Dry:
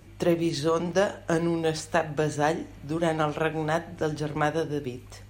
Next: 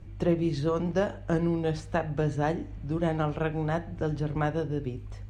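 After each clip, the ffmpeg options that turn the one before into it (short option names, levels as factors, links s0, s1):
-af "aemphasis=mode=reproduction:type=bsi,volume=0.562"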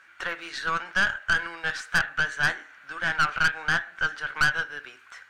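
-af "highpass=f=1500:t=q:w=7.9,aeval=exprs='(tanh(17.8*val(0)+0.5)-tanh(0.5))/17.8':c=same,volume=2.66"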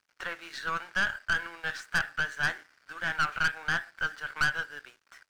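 -af "aeval=exprs='sgn(val(0))*max(abs(val(0))-0.00316,0)':c=same,volume=0.596"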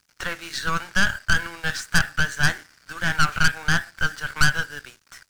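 -af "bass=f=250:g=12,treble=f=4000:g=10,volume=2"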